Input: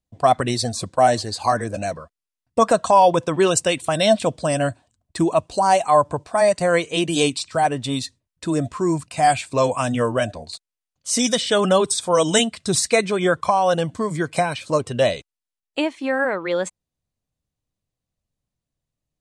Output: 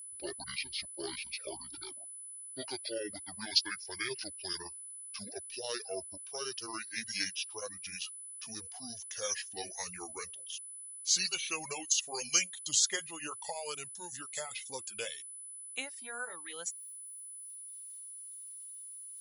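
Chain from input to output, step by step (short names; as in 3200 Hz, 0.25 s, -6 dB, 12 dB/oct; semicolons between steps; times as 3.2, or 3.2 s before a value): gliding pitch shift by -11.5 st ending unshifted; reverb removal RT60 0.95 s; reverse; upward compressor, threshold -36 dBFS; reverse; pre-emphasis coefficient 0.97; whine 10000 Hz -43 dBFS; gain -1.5 dB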